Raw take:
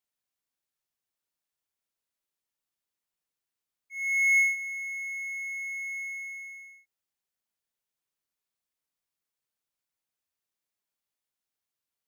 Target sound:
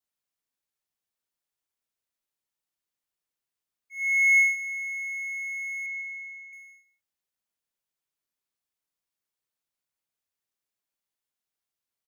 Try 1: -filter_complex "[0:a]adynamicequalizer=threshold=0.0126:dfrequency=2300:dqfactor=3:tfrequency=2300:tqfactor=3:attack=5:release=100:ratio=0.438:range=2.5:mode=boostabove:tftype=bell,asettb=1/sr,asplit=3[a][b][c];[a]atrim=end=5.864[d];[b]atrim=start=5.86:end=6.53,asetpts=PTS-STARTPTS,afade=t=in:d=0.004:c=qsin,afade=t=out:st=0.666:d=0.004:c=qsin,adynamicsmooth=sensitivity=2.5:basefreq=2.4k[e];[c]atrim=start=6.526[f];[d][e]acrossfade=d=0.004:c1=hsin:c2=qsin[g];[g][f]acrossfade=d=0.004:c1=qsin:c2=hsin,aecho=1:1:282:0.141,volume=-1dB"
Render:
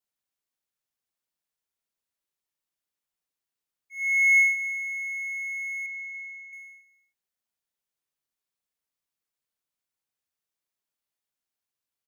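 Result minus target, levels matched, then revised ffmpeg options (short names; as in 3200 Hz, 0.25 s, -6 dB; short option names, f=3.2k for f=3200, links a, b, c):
echo 0.13 s late
-filter_complex "[0:a]adynamicequalizer=threshold=0.0126:dfrequency=2300:dqfactor=3:tfrequency=2300:tqfactor=3:attack=5:release=100:ratio=0.438:range=2.5:mode=boostabove:tftype=bell,asettb=1/sr,asplit=3[a][b][c];[a]atrim=end=5.864[d];[b]atrim=start=5.86:end=6.53,asetpts=PTS-STARTPTS,afade=t=in:d=0.004:c=qsin,afade=t=out:st=0.666:d=0.004:c=qsin,adynamicsmooth=sensitivity=2.5:basefreq=2.4k[e];[c]atrim=start=6.526[f];[d][e]acrossfade=d=0.004:c1=hsin:c2=qsin[g];[g][f]acrossfade=d=0.004:c1=qsin:c2=hsin,aecho=1:1:152:0.141,volume=-1dB"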